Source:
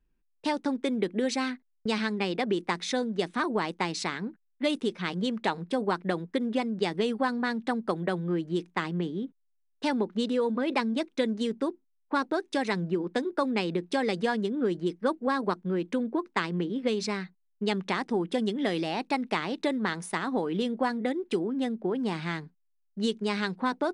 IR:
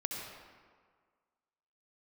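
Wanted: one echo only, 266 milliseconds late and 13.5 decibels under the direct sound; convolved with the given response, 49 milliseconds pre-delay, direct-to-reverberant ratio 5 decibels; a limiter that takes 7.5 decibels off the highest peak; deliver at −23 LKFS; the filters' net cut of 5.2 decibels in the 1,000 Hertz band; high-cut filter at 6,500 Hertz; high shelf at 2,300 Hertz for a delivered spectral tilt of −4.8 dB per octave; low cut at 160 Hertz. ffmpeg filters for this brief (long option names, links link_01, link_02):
-filter_complex "[0:a]highpass=160,lowpass=6500,equalizer=frequency=1000:width_type=o:gain=-6,highshelf=frequency=2300:gain=-3.5,alimiter=limit=-22dB:level=0:latency=1,aecho=1:1:266:0.211,asplit=2[link_01][link_02];[1:a]atrim=start_sample=2205,adelay=49[link_03];[link_02][link_03]afir=irnorm=-1:irlink=0,volume=-7.5dB[link_04];[link_01][link_04]amix=inputs=2:normalize=0,volume=9dB"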